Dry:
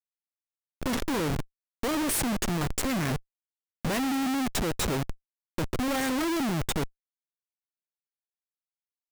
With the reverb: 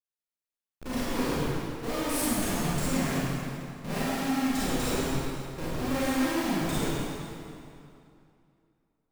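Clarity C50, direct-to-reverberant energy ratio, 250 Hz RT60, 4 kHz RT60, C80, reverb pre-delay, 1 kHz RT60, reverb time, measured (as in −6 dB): −5.5 dB, −10.5 dB, 2.6 s, 2.1 s, −3.0 dB, 27 ms, 2.6 s, 2.6 s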